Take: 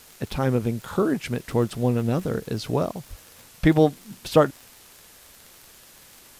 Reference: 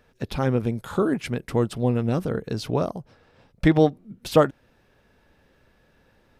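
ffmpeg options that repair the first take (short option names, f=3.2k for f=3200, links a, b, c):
-filter_complex "[0:a]adeclick=t=4,asplit=3[a][b][c];[a]afade=t=out:st=3.09:d=0.02[d];[b]highpass=f=140:w=0.5412,highpass=f=140:w=1.3066,afade=t=in:st=3.09:d=0.02,afade=t=out:st=3.21:d=0.02[e];[c]afade=t=in:st=3.21:d=0.02[f];[d][e][f]amix=inputs=3:normalize=0,afwtdn=0.0035"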